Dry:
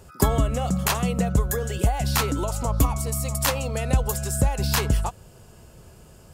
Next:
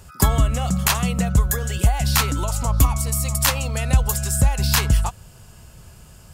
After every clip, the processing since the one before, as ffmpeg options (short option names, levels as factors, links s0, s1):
-af "equalizer=f=410:t=o:w=1.8:g=-10,volume=1.88"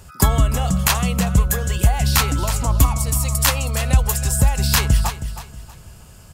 -af "aecho=1:1:319|638|957:0.251|0.0754|0.0226,volume=1.19"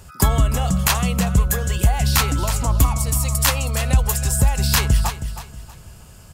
-af "asoftclip=type=tanh:threshold=0.631"